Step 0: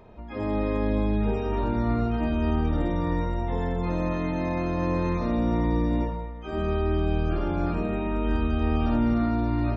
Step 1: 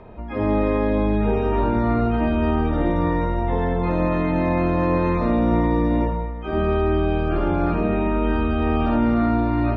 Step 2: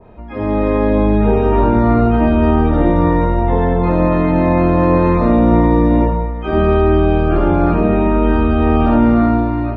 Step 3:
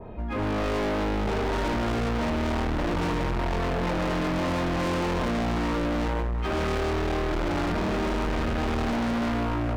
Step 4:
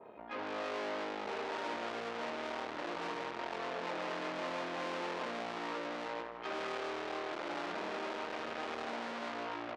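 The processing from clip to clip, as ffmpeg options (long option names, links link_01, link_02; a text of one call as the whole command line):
ffmpeg -i in.wav -filter_complex "[0:a]lowpass=2900,acrossover=split=280[link_01][link_02];[link_01]alimiter=level_in=1dB:limit=-24dB:level=0:latency=1,volume=-1dB[link_03];[link_03][link_02]amix=inputs=2:normalize=0,volume=7.5dB" out.wav
ffmpeg -i in.wav -af "dynaudnorm=framelen=170:gausssize=7:maxgain=11.5dB,adynamicequalizer=threshold=0.0282:dfrequency=1600:dqfactor=0.7:tfrequency=1600:tqfactor=0.7:attack=5:release=100:ratio=0.375:range=2.5:mode=cutabove:tftype=highshelf" out.wav
ffmpeg -i in.wav -af "asoftclip=type=tanh:threshold=-18dB,aphaser=in_gain=1:out_gain=1:delay=3.6:decay=0.22:speed=0.33:type=triangular,asoftclip=type=hard:threshold=-25.5dB" out.wav
ffmpeg -i in.wav -af "aeval=exprs='(tanh(31.6*val(0)+0.7)-tanh(0.7))/31.6':channel_layout=same,highpass=420,lowpass=4900,aecho=1:1:165:0.188,volume=-3.5dB" out.wav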